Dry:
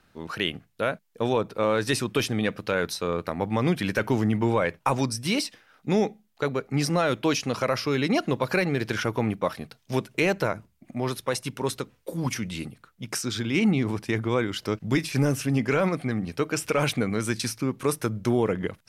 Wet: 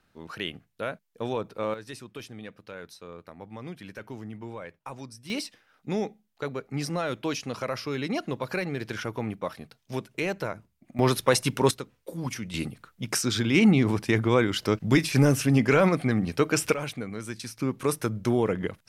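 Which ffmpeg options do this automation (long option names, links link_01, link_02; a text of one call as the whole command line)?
ffmpeg -i in.wav -af "asetnsamples=nb_out_samples=441:pad=0,asendcmd='1.74 volume volume -16dB;5.3 volume volume -6dB;10.99 volume volume 6dB;11.71 volume volume -4.5dB;12.54 volume volume 3dB;16.74 volume volume -9dB;17.58 volume volume -1dB',volume=-6dB" out.wav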